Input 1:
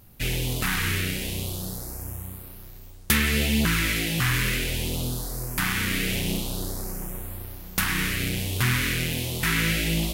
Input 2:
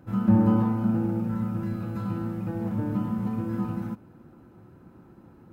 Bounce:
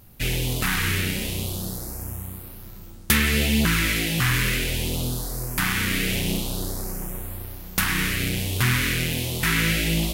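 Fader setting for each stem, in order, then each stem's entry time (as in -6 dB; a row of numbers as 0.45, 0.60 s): +2.0, -19.5 dB; 0.00, 0.70 s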